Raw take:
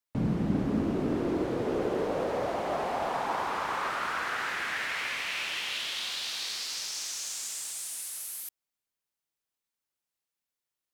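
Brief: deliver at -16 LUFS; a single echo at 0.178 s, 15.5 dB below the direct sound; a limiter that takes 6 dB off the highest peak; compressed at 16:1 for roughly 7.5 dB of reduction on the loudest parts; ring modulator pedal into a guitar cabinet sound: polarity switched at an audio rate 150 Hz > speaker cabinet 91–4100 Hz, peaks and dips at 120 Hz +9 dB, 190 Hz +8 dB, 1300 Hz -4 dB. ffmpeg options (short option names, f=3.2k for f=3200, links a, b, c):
-af "acompressor=threshold=-31dB:ratio=16,alimiter=level_in=5dB:limit=-24dB:level=0:latency=1,volume=-5dB,aecho=1:1:178:0.168,aeval=exprs='val(0)*sgn(sin(2*PI*150*n/s))':c=same,highpass=91,equalizer=f=120:t=q:w=4:g=9,equalizer=f=190:t=q:w=4:g=8,equalizer=f=1.3k:t=q:w=4:g=-4,lowpass=f=4.1k:w=0.5412,lowpass=f=4.1k:w=1.3066,volume=21.5dB"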